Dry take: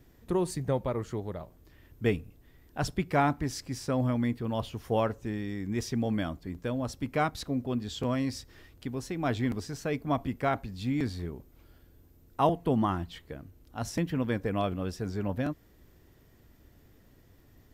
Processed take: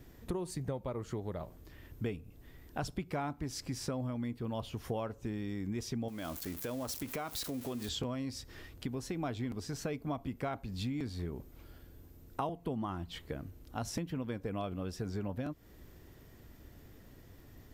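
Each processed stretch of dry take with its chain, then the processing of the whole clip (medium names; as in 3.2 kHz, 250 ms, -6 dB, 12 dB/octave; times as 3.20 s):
6.08–7.89 s: zero-crossing glitches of -33.5 dBFS + tone controls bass -8 dB, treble -1 dB + compression, threshold -35 dBFS
whole clip: dynamic bell 1.8 kHz, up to -5 dB, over -55 dBFS, Q 4.7; compression 6:1, threshold -38 dBFS; trim +3.5 dB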